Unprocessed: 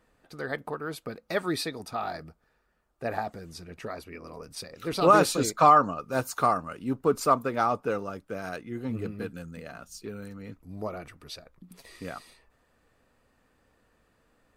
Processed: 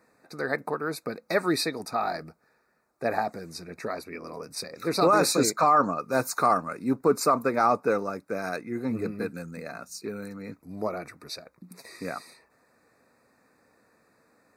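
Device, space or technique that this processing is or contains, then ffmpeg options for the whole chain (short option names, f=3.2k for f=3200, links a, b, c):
PA system with an anti-feedback notch: -af "highpass=160,asuperstop=centerf=3100:order=12:qfactor=2.8,alimiter=limit=-16dB:level=0:latency=1:release=18,volume=4.5dB"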